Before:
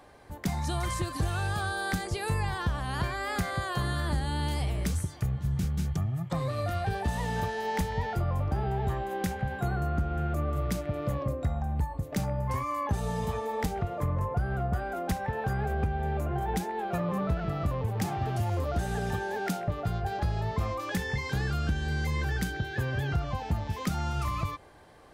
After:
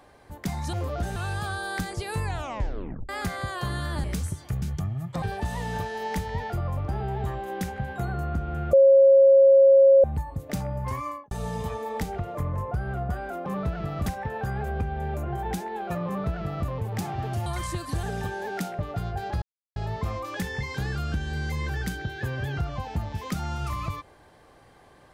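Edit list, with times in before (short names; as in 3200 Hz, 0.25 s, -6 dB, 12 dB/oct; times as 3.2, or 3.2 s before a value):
0.73–1.3 swap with 18.49–18.92
2.38 tape stop 0.85 s
4.18–4.76 cut
5.34–5.79 cut
6.39–6.85 cut
10.36–11.67 bleep 544 Hz -11.5 dBFS
12.68–12.94 studio fade out
17.1–17.7 copy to 15.09
20.31 insert silence 0.34 s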